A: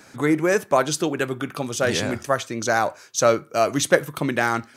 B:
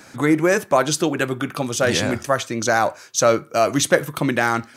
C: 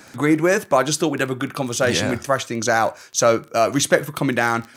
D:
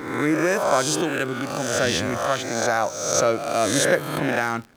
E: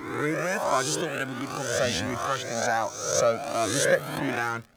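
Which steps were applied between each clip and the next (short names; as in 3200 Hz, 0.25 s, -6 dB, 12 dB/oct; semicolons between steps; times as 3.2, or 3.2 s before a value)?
notch 420 Hz, Q 13; in parallel at -0.5 dB: limiter -11.5 dBFS, peak gain reduction 9.5 dB; on the sum: gain -2 dB
crackle 17/s -26 dBFS
spectral swells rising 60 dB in 1.03 s; backlash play -34.5 dBFS; gain -6 dB
cascading flanger rising 1.4 Hz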